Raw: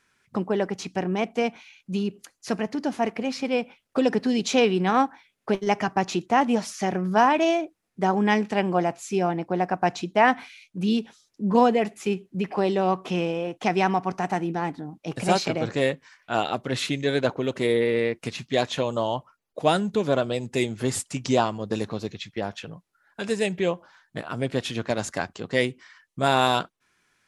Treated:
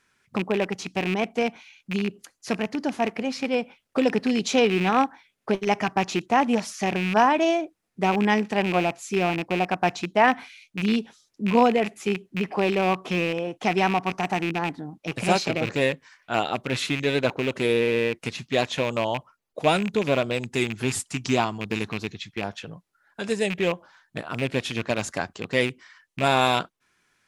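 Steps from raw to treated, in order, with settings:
loose part that buzzes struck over −30 dBFS, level −19 dBFS
0:20.44–0:22.44: parametric band 540 Hz −9 dB 0.35 octaves

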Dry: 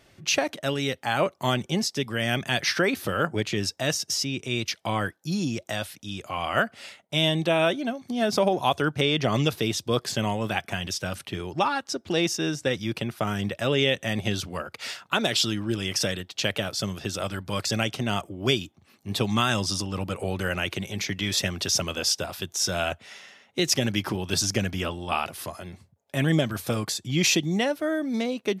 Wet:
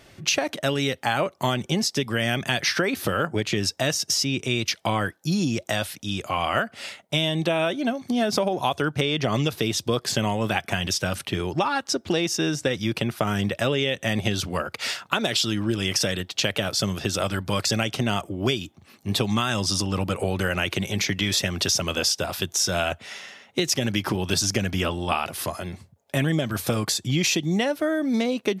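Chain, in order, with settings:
downward compressor, threshold −26 dBFS, peak gain reduction 9 dB
level +6.5 dB

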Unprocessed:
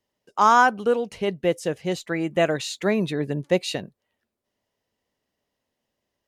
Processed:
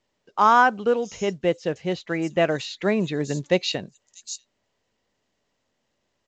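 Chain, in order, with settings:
0:03.25–0:03.72: high-shelf EQ 3,900 Hz +11.5 dB
multiband delay without the direct sound lows, highs 640 ms, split 5,800 Hz
mu-law 128 kbit/s 16,000 Hz

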